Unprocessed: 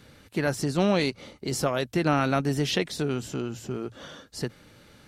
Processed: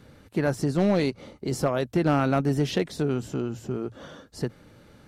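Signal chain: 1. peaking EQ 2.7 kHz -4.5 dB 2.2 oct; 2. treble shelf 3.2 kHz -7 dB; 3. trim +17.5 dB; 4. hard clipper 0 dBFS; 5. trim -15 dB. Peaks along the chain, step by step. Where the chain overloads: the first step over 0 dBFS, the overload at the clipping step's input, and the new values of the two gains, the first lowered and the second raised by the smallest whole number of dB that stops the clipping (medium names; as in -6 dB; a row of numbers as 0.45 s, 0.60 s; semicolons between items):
-11.0 dBFS, -11.5 dBFS, +6.0 dBFS, 0.0 dBFS, -15.0 dBFS; step 3, 6.0 dB; step 3 +11.5 dB, step 5 -9 dB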